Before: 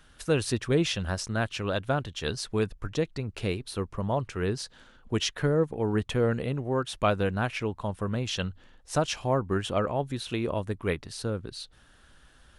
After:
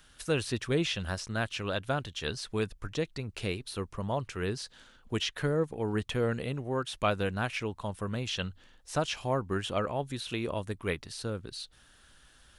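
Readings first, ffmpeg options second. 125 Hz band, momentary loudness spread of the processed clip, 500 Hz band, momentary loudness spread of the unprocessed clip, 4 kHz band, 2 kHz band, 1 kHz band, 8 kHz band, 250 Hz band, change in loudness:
-4.5 dB, 7 LU, -4.0 dB, 7 LU, -1.5 dB, -1.5 dB, -3.0 dB, -4.5 dB, -4.5 dB, -3.5 dB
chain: -filter_complex "[0:a]acrossover=split=3600[s0][s1];[s1]acompressor=threshold=0.00708:ratio=4:attack=1:release=60[s2];[s0][s2]amix=inputs=2:normalize=0,highshelf=f=2300:g=8.5,volume=0.596"

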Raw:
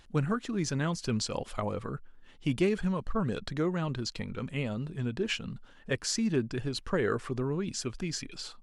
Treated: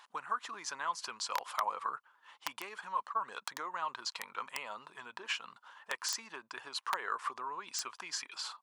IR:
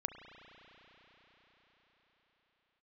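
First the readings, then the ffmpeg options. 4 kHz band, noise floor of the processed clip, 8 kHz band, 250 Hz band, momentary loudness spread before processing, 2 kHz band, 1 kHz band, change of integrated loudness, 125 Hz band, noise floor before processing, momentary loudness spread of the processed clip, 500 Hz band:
-2.5 dB, -73 dBFS, -3.0 dB, -28.5 dB, 7 LU, -2.0 dB, +4.5 dB, -6.5 dB, under -35 dB, -55 dBFS, 9 LU, -17.0 dB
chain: -af "acompressor=threshold=0.0251:ratio=8,aeval=exprs='(mod(15.8*val(0)+1,2)-1)/15.8':c=same,highpass=f=1000:t=q:w=4.9"

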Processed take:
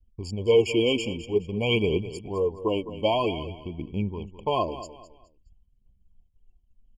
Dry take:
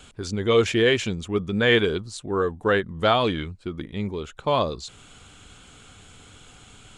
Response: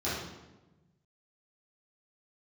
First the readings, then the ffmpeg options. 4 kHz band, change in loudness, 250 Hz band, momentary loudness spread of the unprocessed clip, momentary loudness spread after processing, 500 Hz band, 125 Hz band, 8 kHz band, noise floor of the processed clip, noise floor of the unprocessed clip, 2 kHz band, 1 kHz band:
-3.5 dB, -3.0 dB, -2.5 dB, 12 LU, 13 LU, -2.0 dB, -2.5 dB, no reading, -64 dBFS, -50 dBFS, -9.0 dB, -4.5 dB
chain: -af "anlmdn=3.98,aphaser=in_gain=1:out_gain=1:delay=4:decay=0.51:speed=0.51:type=triangular,agate=range=0.0224:threshold=0.00398:ratio=3:detection=peak,aecho=1:1:209|418|627:0.211|0.0655|0.0203,afftfilt=real='re*eq(mod(floor(b*sr/1024/1100),2),0)':imag='im*eq(mod(floor(b*sr/1024/1100),2),0)':win_size=1024:overlap=0.75,volume=0.668"

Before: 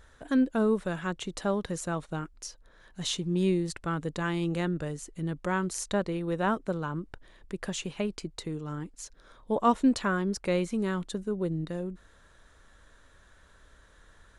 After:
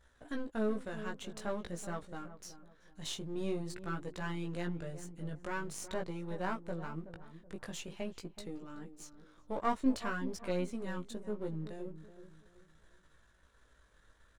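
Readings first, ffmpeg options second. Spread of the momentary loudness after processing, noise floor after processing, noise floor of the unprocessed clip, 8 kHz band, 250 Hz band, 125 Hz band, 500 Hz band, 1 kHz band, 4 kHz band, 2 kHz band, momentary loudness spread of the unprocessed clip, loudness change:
15 LU, -67 dBFS, -59 dBFS, -9.0 dB, -10.0 dB, -10.0 dB, -8.5 dB, -8.5 dB, -9.0 dB, -7.5 dB, 13 LU, -9.5 dB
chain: -filter_complex "[0:a]aeval=exprs='if(lt(val(0),0),0.447*val(0),val(0))':c=same,flanger=delay=16.5:depth=3.3:speed=0.47,asplit=2[s0][s1];[s1]adelay=376,lowpass=f=960:p=1,volume=0.266,asplit=2[s2][s3];[s3]adelay=376,lowpass=f=960:p=1,volume=0.36,asplit=2[s4][s5];[s5]adelay=376,lowpass=f=960:p=1,volume=0.36,asplit=2[s6][s7];[s7]adelay=376,lowpass=f=960:p=1,volume=0.36[s8];[s0][s2][s4][s6][s8]amix=inputs=5:normalize=0,volume=0.668"

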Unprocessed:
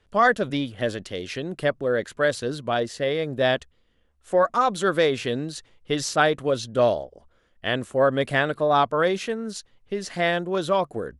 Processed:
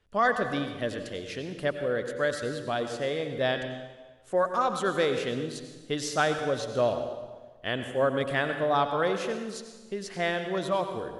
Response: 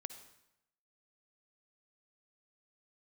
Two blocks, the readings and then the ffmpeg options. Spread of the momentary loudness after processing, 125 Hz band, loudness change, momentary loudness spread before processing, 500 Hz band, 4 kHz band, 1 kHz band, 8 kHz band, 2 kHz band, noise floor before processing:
11 LU, -5.0 dB, -5.0 dB, 11 LU, -5.0 dB, -5.0 dB, -5.0 dB, -5.0 dB, -5.0 dB, -64 dBFS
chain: -filter_complex "[1:a]atrim=start_sample=2205,asetrate=27342,aresample=44100[s0];[0:a][s0]afir=irnorm=-1:irlink=0,volume=0.631"

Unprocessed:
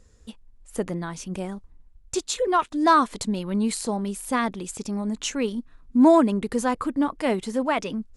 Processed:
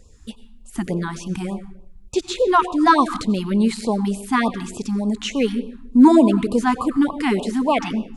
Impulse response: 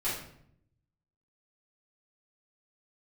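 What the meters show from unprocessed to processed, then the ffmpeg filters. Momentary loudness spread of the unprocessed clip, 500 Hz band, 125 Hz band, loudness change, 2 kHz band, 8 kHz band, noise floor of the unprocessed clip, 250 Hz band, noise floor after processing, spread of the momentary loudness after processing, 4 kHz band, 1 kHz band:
14 LU, +3.0 dB, +6.5 dB, +5.0 dB, +4.5 dB, -3.0 dB, -54 dBFS, +6.0 dB, -45 dBFS, 13 LU, +4.0 dB, +4.0 dB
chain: -filter_complex "[0:a]acrossover=split=4200[s0][s1];[s1]acompressor=threshold=0.00708:ratio=4:attack=1:release=60[s2];[s0][s2]amix=inputs=2:normalize=0,asplit=2[s3][s4];[1:a]atrim=start_sample=2205,highshelf=f=8200:g=-3,adelay=85[s5];[s4][s5]afir=irnorm=-1:irlink=0,volume=0.106[s6];[s3][s6]amix=inputs=2:normalize=0,afftfilt=real='re*(1-between(b*sr/1024,470*pow(1800/470,0.5+0.5*sin(2*PI*3.4*pts/sr))/1.41,470*pow(1800/470,0.5+0.5*sin(2*PI*3.4*pts/sr))*1.41))':imag='im*(1-between(b*sr/1024,470*pow(1800/470,0.5+0.5*sin(2*PI*3.4*pts/sr))/1.41,470*pow(1800/470,0.5+0.5*sin(2*PI*3.4*pts/sr))*1.41))':win_size=1024:overlap=0.75,volume=2"

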